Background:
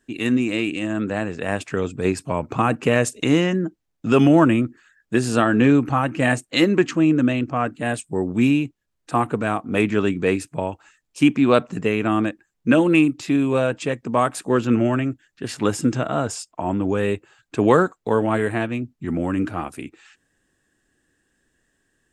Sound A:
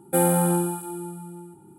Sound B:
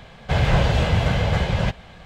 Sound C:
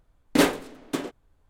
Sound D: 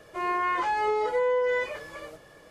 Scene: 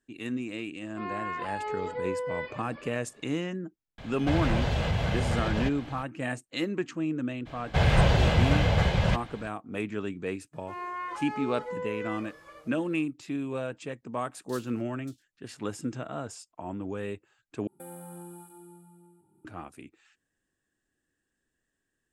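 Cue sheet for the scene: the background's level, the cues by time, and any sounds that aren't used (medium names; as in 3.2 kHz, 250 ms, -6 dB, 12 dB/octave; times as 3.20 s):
background -13.5 dB
0.82 s: add D -8 dB + resampled via 11.025 kHz
3.98 s: add B -1.5 dB + compression 2:1, threshold -27 dBFS
7.45 s: add B -3 dB, fades 0.02 s
10.53 s: add D -11 dB + peaking EQ 1.2 kHz +7 dB 0.24 oct
14.14 s: add C -16.5 dB + inverse Chebyshev high-pass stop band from 1.6 kHz, stop band 50 dB
17.67 s: replace with A -16.5 dB + compression 4:1, threshold -25 dBFS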